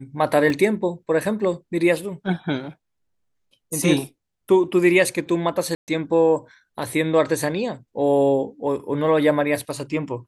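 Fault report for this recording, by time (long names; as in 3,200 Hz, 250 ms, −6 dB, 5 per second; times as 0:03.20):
0:00.50: drop-out 2.3 ms
0:05.75–0:05.88: drop-out 128 ms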